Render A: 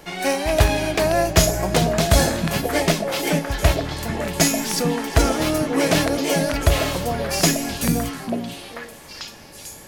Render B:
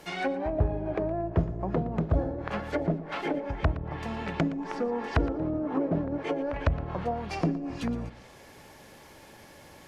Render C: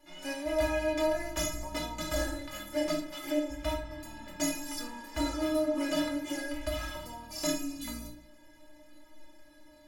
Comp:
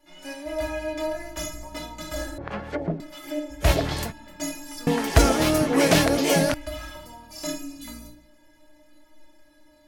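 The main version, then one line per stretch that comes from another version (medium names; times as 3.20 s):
C
2.38–3.00 s: from B
3.65–4.08 s: from A, crossfade 0.10 s
4.87–6.54 s: from A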